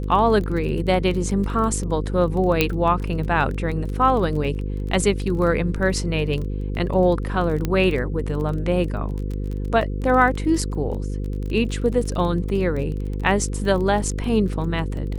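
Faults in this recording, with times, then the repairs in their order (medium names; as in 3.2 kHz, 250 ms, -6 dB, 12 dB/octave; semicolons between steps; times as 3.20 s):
buzz 50 Hz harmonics 10 -26 dBFS
crackle 22 per s -28 dBFS
2.61 s: pop -3 dBFS
7.65 s: pop -10 dBFS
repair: de-click; de-hum 50 Hz, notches 10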